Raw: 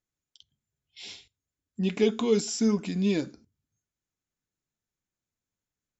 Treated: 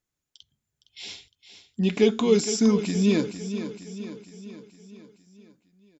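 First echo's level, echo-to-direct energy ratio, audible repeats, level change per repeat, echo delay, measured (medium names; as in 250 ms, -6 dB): -11.0 dB, -9.5 dB, 5, -5.5 dB, 462 ms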